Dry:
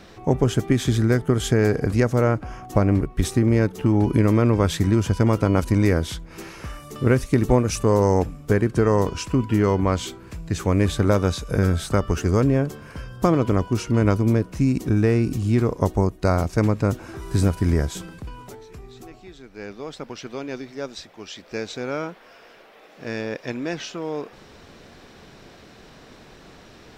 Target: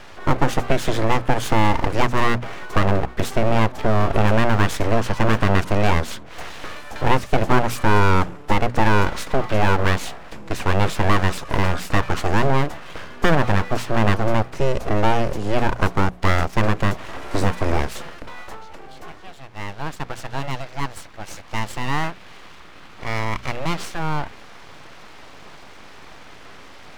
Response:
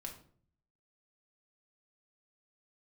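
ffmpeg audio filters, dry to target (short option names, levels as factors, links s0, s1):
-filter_complex "[0:a]asplit=2[s0][s1];[s1]highpass=f=720:p=1,volume=6.31,asoftclip=type=tanh:threshold=0.708[s2];[s0][s2]amix=inputs=2:normalize=0,lowpass=f=1200:p=1,volume=0.501,aeval=exprs='abs(val(0))':c=same,bandreject=f=60:t=h:w=6,bandreject=f=120:t=h:w=6,bandreject=f=180:t=h:w=6,bandreject=f=240:t=h:w=6,volume=1.41"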